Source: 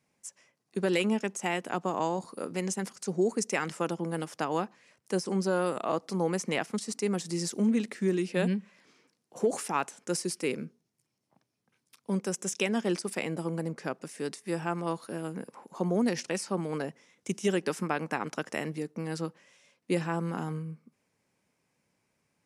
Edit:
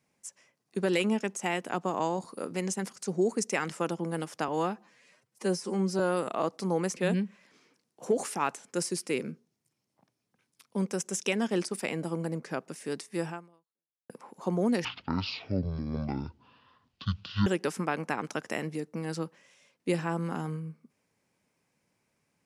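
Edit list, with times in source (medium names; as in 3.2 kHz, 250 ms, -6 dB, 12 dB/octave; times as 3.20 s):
4.48–5.49 s: stretch 1.5×
6.46–8.30 s: delete
14.62–15.43 s: fade out exponential
16.18–17.49 s: speed 50%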